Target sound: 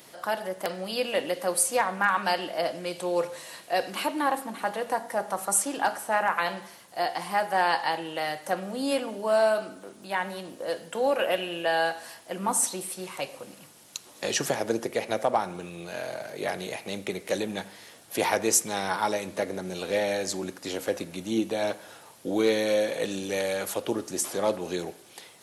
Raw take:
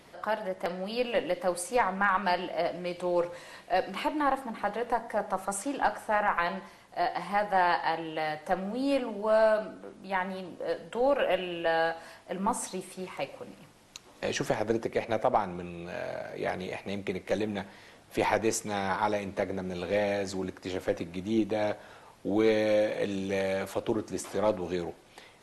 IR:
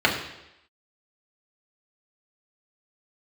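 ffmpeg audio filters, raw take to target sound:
-filter_complex "[0:a]highpass=110,aemphasis=mode=production:type=75kf,asplit=2[a][b];[1:a]atrim=start_sample=2205,asetrate=41895,aresample=44100[c];[b][c]afir=irnorm=-1:irlink=0,volume=-33.5dB[d];[a][d]amix=inputs=2:normalize=0"

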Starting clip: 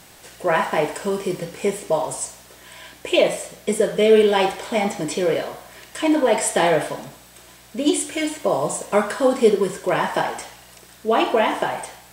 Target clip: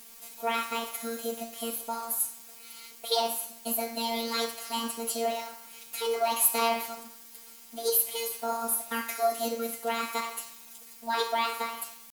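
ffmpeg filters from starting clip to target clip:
-af "afftfilt=real='hypot(re,im)*cos(PI*b)':imag='0':win_size=1024:overlap=0.75,crystalizer=i=3:c=0,asetrate=58866,aresample=44100,atempo=0.749154,volume=-8dB"

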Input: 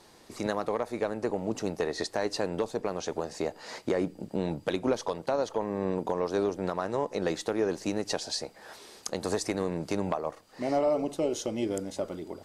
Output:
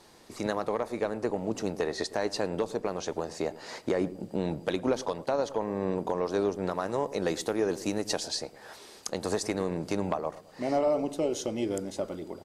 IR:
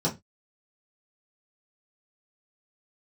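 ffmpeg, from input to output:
-filter_complex "[0:a]asettb=1/sr,asplit=3[a][b][c];[a]atrim=end=6.714[d];[b]atrim=start=6.71:end=8.28,asetpts=PTS-STARTPTS,afade=t=in:d=0.004:c=qsin,afade=t=out:st=1.566:d=0.004:c=qsin,highshelf=f=9.9k:g=11[e];[c]atrim=start=8.276[f];[d][e]acrossfade=d=0.004:c1=hsin:c2=qsin[g];[g][f]acrossfade=d=0.004:c1=qsin:c2=hsin,asplit=2[h][i];[i]adelay=109,lowpass=f=890:p=1,volume=-15.5dB,asplit=2[j][k];[k]adelay=109,lowpass=f=890:p=1,volume=0.51,asplit=2[l][m];[m]adelay=109,lowpass=f=890:p=1,volume=0.51,asplit=2[n][o];[o]adelay=109,lowpass=f=890:p=1,volume=0.51,asplit=2[p][q];[q]adelay=109,lowpass=f=890:p=1,volume=0.51[r];[h][j][l][n][p][r]amix=inputs=6:normalize=0"

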